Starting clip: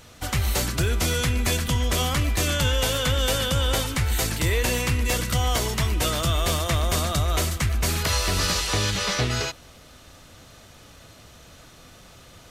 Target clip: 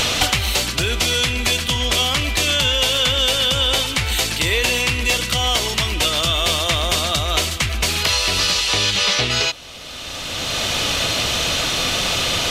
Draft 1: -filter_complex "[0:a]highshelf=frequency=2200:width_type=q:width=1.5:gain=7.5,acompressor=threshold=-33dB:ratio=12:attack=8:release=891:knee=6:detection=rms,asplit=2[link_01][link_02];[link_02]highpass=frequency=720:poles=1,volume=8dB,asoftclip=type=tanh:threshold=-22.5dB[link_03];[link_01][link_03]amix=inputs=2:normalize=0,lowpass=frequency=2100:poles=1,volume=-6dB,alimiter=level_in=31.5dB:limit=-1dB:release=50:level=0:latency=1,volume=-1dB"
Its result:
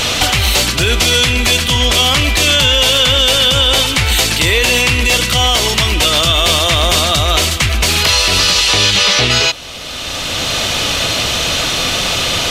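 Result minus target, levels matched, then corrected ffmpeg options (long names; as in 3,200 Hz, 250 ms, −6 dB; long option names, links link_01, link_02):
downward compressor: peak gain reduction −8.5 dB
-filter_complex "[0:a]highshelf=frequency=2200:width_type=q:width=1.5:gain=7.5,acompressor=threshold=-42dB:ratio=12:attack=8:release=891:knee=6:detection=rms,asplit=2[link_01][link_02];[link_02]highpass=frequency=720:poles=1,volume=8dB,asoftclip=type=tanh:threshold=-22.5dB[link_03];[link_01][link_03]amix=inputs=2:normalize=0,lowpass=frequency=2100:poles=1,volume=-6dB,alimiter=level_in=31.5dB:limit=-1dB:release=50:level=0:latency=1,volume=-1dB"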